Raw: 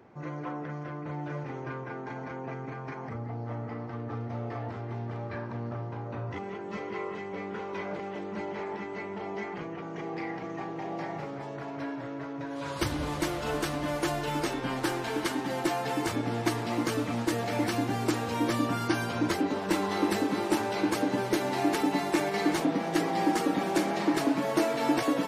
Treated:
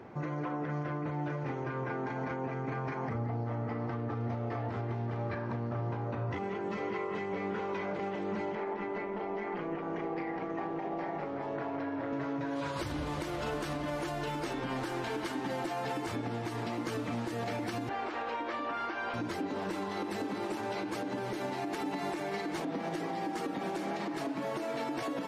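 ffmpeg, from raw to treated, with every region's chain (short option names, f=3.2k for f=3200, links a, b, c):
-filter_complex "[0:a]asettb=1/sr,asplit=3[a][b][c];[a]atrim=end=8.554[d];[b]atrim=start=8.55:end=12.13,asetpts=PTS-STARTPTS,afade=t=in:d=0.004:c=qsin,afade=t=out:st=3.576:d=0.004:c=qsin,highpass=210,aemphasis=mode=reproduction:type=75fm,tremolo=f=180:d=0.4[e];[c]atrim=start=12.126[f];[d][e]acrossfade=d=0.004:c1=hsin:c2=qsin[g];[g][f]acrossfade=d=0.004:c1=qsin:c2=hsin,asettb=1/sr,asplit=3[h][i][j];[h]atrim=end=17.894[k];[i]atrim=start=17.89:end=19.14,asetpts=PTS-STARTPTS,afade=t=in:d=0.004:c=qsin,afade=t=out:st=1.246:d=0.004:c=qsin,highpass=540,lowpass=2.7k,aeval=exprs='val(0)+0.000562*(sin(2*PI*50*n/s)+sin(2*PI*2*50*n/s)/2+sin(2*PI*3*50*n/s)/3+sin(2*PI*4*50*n/s)/4+sin(2*PI*5*50*n/s)/5)':c=same[l];[j]atrim=start=19.136[m];[k][l]acrossfade=d=0.004:c1=hsin:c2=qsin[n];[n][m]acrossfade=d=0.004:c1=qsin:c2=hsin,highshelf=f=6.7k:g=-7,acompressor=threshold=-33dB:ratio=6,alimiter=level_in=9.5dB:limit=-24dB:level=0:latency=1:release=151,volume=-9.5dB,volume=6.5dB"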